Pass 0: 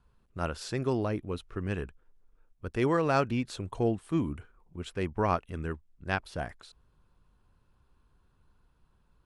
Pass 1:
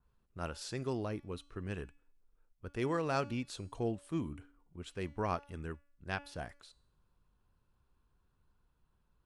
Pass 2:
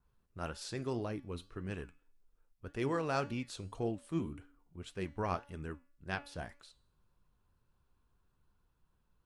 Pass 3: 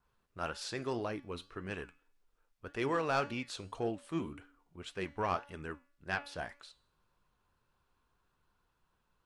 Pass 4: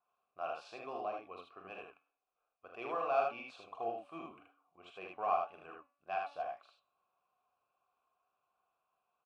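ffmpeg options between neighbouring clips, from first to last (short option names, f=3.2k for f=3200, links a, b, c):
-af "bandreject=f=285.4:t=h:w=4,bandreject=f=570.8:t=h:w=4,bandreject=f=856.2:t=h:w=4,bandreject=f=1.1416k:t=h:w=4,bandreject=f=1.427k:t=h:w=4,bandreject=f=1.7124k:t=h:w=4,bandreject=f=1.9978k:t=h:w=4,bandreject=f=2.2832k:t=h:w=4,bandreject=f=2.5686k:t=h:w=4,bandreject=f=2.854k:t=h:w=4,bandreject=f=3.1394k:t=h:w=4,bandreject=f=3.4248k:t=h:w=4,bandreject=f=3.7102k:t=h:w=4,bandreject=f=3.9956k:t=h:w=4,bandreject=f=4.281k:t=h:w=4,bandreject=f=4.5664k:t=h:w=4,bandreject=f=4.8518k:t=h:w=4,bandreject=f=5.1372k:t=h:w=4,bandreject=f=5.4226k:t=h:w=4,bandreject=f=5.708k:t=h:w=4,bandreject=f=5.9934k:t=h:w=4,bandreject=f=6.2788k:t=h:w=4,bandreject=f=6.5642k:t=h:w=4,bandreject=f=6.8496k:t=h:w=4,bandreject=f=7.135k:t=h:w=4,bandreject=f=7.4204k:t=h:w=4,bandreject=f=7.7058k:t=h:w=4,bandreject=f=7.9912k:t=h:w=4,bandreject=f=8.2766k:t=h:w=4,bandreject=f=8.562k:t=h:w=4,bandreject=f=8.8474k:t=h:w=4,bandreject=f=9.1328k:t=h:w=4,bandreject=f=9.4182k:t=h:w=4,adynamicequalizer=threshold=0.00398:dfrequency=3100:dqfactor=0.7:tfrequency=3100:tqfactor=0.7:attack=5:release=100:ratio=0.375:range=2.5:mode=boostabove:tftype=highshelf,volume=-7.5dB"
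-af "flanger=delay=4.8:depth=7.4:regen=75:speed=1.8:shape=triangular,volume=4dB"
-filter_complex "[0:a]asplit=2[a][b];[b]highpass=f=720:p=1,volume=11dB,asoftclip=type=tanh:threshold=-19.5dB[c];[a][c]amix=inputs=2:normalize=0,lowpass=f=4.2k:p=1,volume=-6dB"
-filter_complex "[0:a]asplit=3[a][b][c];[a]bandpass=f=730:t=q:w=8,volume=0dB[d];[b]bandpass=f=1.09k:t=q:w=8,volume=-6dB[e];[c]bandpass=f=2.44k:t=q:w=8,volume=-9dB[f];[d][e][f]amix=inputs=3:normalize=0,aecho=1:1:43|77:0.473|0.708,volume=5.5dB"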